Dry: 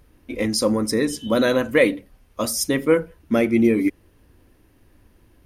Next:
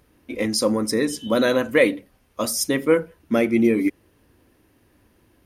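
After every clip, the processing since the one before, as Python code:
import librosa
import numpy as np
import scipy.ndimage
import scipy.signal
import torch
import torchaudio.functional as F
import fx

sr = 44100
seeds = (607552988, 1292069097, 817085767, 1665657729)

y = fx.highpass(x, sr, hz=130.0, slope=6)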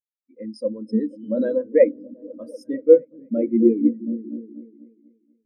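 y = fx.echo_opening(x, sr, ms=241, hz=200, octaves=1, feedback_pct=70, wet_db=-3)
y = fx.spectral_expand(y, sr, expansion=2.5)
y = y * librosa.db_to_amplitude(2.0)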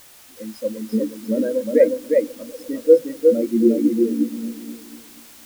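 y = fx.dmg_noise_colour(x, sr, seeds[0], colour='white', level_db=-47.0)
y = y + 10.0 ** (-3.0 / 20.0) * np.pad(y, (int(358 * sr / 1000.0), 0))[:len(y)]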